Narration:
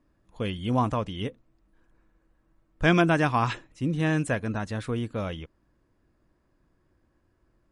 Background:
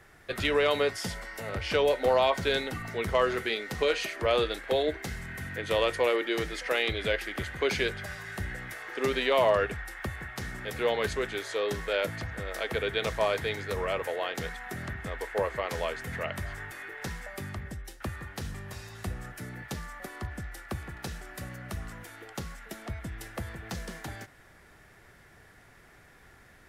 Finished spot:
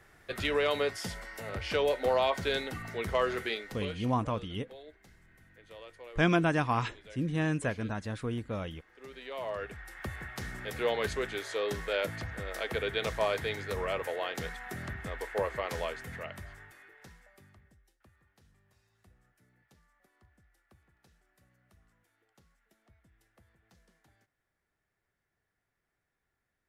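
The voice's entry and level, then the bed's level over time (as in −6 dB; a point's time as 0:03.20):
3.35 s, −5.0 dB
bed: 0:03.53 −3.5 dB
0:04.19 −23 dB
0:08.92 −23 dB
0:10.14 −2.5 dB
0:15.78 −2.5 dB
0:18.08 −28 dB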